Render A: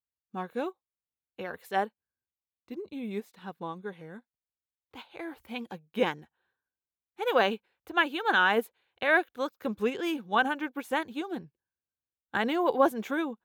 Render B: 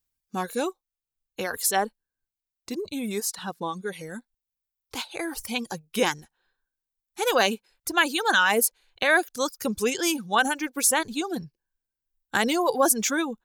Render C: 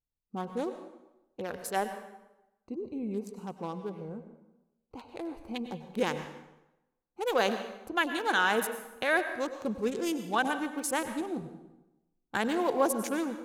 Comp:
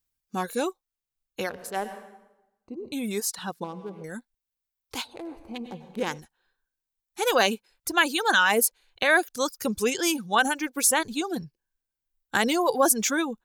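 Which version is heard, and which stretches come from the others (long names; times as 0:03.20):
B
0:01.49–0:02.92: punch in from C
0:03.64–0:04.04: punch in from C
0:05.08–0:06.13: punch in from C, crossfade 0.16 s
not used: A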